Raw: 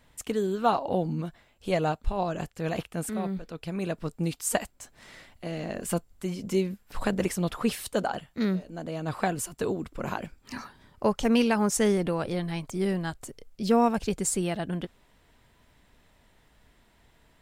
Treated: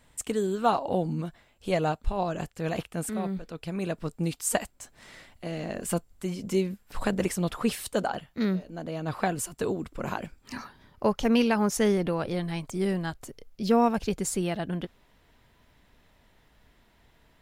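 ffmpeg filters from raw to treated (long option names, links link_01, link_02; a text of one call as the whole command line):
ffmpeg -i in.wav -af "asetnsamples=nb_out_samples=441:pad=0,asendcmd='1.24 equalizer g 1.5;8.09 equalizer g -8;9.31 equalizer g 1;10.57 equalizer g -9;12.34 equalizer g 1;13.06 equalizer g -6.5',equalizer=frequency=8200:width_type=o:width=0.35:gain=8" out.wav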